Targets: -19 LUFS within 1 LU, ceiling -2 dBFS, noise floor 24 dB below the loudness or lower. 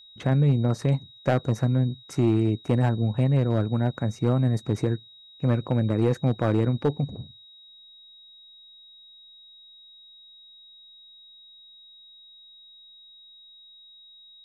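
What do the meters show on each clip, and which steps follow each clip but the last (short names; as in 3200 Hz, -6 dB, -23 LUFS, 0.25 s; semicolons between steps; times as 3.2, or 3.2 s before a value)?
clipped 0.5%; flat tops at -14.0 dBFS; steady tone 3800 Hz; tone level -48 dBFS; loudness -24.5 LUFS; peak -14.0 dBFS; loudness target -19.0 LUFS
-> clip repair -14 dBFS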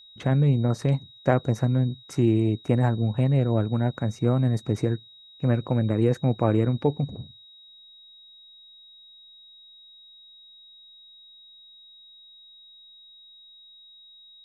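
clipped 0.0%; steady tone 3800 Hz; tone level -48 dBFS
-> notch 3800 Hz, Q 30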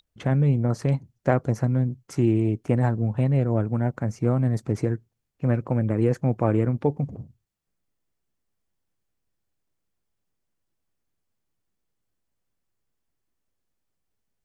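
steady tone none; loudness -24.5 LUFS; peak -5.0 dBFS; loudness target -19.0 LUFS
-> gain +5.5 dB; limiter -2 dBFS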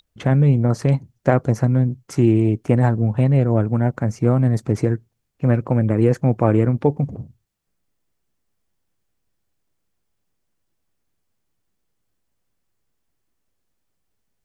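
loudness -19.0 LUFS; peak -2.0 dBFS; noise floor -73 dBFS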